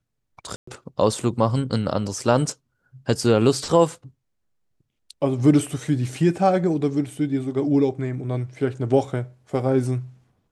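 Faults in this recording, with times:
0.56–0.67 gap 0.114 s

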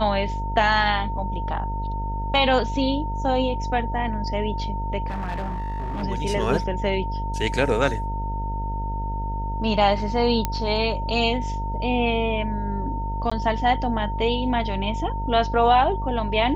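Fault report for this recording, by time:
buzz 50 Hz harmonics 18 -28 dBFS
tone 910 Hz -30 dBFS
5.07–6.04 clipped -24.5 dBFS
10.45 pop -8 dBFS
13.3–13.31 gap 15 ms

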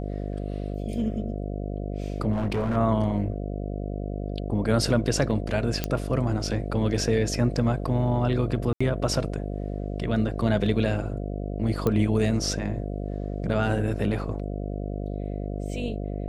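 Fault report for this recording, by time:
buzz 50 Hz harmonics 14 -31 dBFS
2.32–2.77 clipped -22 dBFS
5.84 pop -10 dBFS
8.73–8.8 gap 75 ms
11.87 pop -12 dBFS

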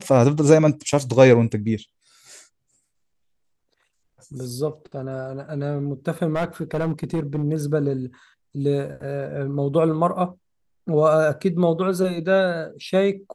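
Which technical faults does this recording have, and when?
6.34–7.43 clipped -18.5 dBFS

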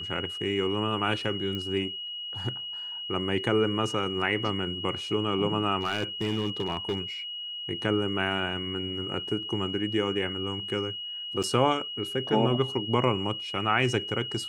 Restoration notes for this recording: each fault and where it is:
tone 2900 Hz -34 dBFS
1.55 pop -22 dBFS
5.81–7 clipped -23 dBFS
11.43–11.44 gap 6.4 ms

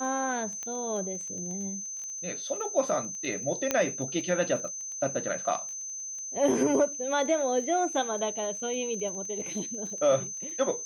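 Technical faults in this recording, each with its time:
crackle 14/s -36 dBFS
tone 6200 Hz -35 dBFS
0.63 pop -23 dBFS
3.71 pop -10 dBFS

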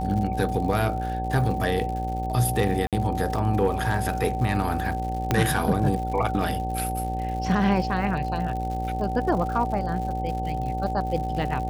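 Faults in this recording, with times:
buzz 60 Hz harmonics 15 -30 dBFS
crackle 130/s -33 dBFS
tone 760 Hz -29 dBFS
2.87–2.93 gap 57 ms
5.31 pop -7 dBFS

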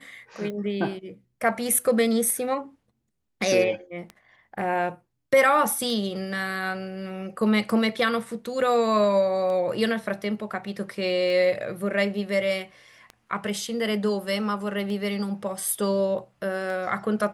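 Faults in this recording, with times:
tick 33 1/3 rpm -23 dBFS

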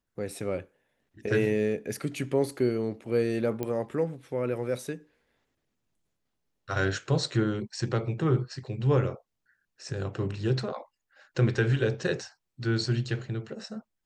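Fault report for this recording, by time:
3.63 pop -18 dBFS

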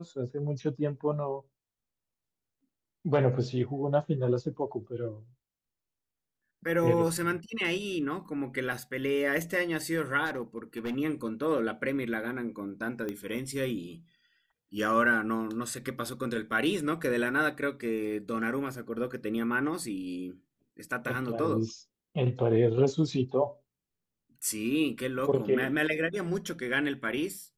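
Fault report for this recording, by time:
10.25–10.97 clipped -29 dBFS
13.09 pop -22 dBFS

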